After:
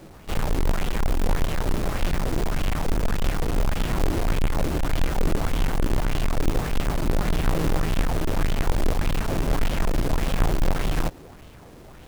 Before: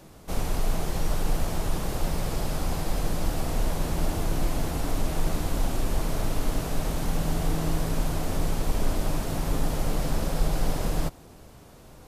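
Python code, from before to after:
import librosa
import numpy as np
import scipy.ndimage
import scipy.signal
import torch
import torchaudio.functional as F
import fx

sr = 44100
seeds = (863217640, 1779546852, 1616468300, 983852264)

y = fx.halfwave_hold(x, sr)
y = fx.bell_lfo(y, sr, hz=1.7, low_hz=310.0, high_hz=3200.0, db=7)
y = F.gain(torch.from_numpy(y), -2.0).numpy()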